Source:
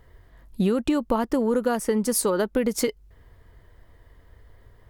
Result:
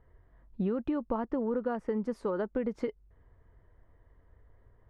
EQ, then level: LPF 1600 Hz 12 dB/oct; -8.5 dB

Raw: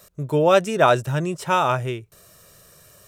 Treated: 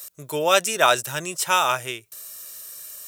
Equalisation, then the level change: tilt +4.5 dB/oct; -1.0 dB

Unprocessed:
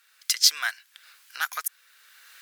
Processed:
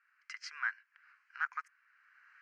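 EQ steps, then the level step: BPF 710–2500 Hz; air absorption 93 m; fixed phaser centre 1500 Hz, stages 4; -4.5 dB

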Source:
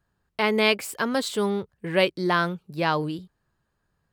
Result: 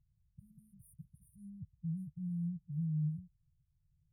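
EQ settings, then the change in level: brick-wall FIR band-stop 170–9100 Hz; air absorption 170 m; +2.0 dB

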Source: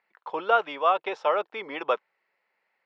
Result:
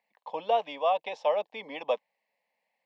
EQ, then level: fixed phaser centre 370 Hz, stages 6; 0.0 dB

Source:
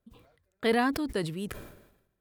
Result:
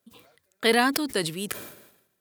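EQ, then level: Bessel high-pass 190 Hz, order 2; high shelf 2500 Hz +11 dB; +3.5 dB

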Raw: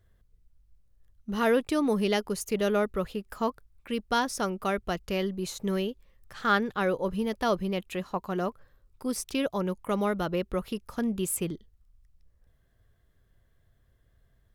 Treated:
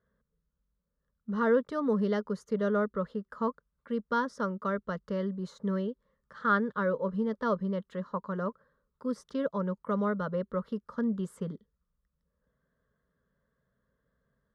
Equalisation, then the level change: BPF 100–2600 Hz; fixed phaser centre 500 Hz, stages 8; 0.0 dB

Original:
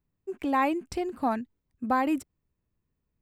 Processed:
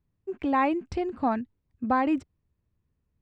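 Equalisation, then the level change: air absorption 140 m; bell 84 Hz +6 dB 1.3 oct; +1.5 dB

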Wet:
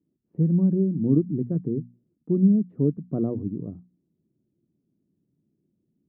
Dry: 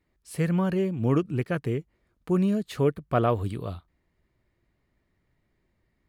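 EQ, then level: Butterworth band-pass 220 Hz, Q 1.2; air absorption 400 m; notches 60/120/180/240 Hz; +7.0 dB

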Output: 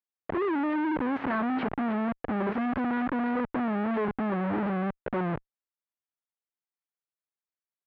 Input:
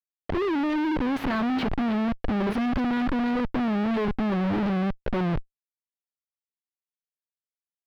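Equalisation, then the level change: HPF 230 Hz 6 dB/oct; Chebyshev low-pass 1700 Hz, order 2; 0.0 dB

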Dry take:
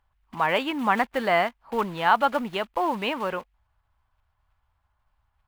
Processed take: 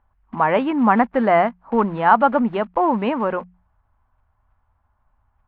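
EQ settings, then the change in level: LPF 1400 Hz 12 dB/oct; bell 230 Hz +6 dB 0.48 oct; notches 60/120/180 Hz; +7.0 dB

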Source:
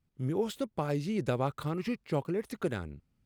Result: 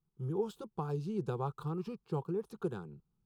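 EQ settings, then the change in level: high shelf 3100 Hz -11 dB; fixed phaser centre 400 Hz, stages 8; -2.0 dB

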